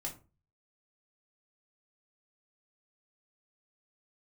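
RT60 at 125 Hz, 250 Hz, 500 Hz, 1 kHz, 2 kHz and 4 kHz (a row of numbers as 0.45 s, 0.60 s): 0.60 s, 0.40 s, 0.35 s, 0.30 s, 0.25 s, 0.20 s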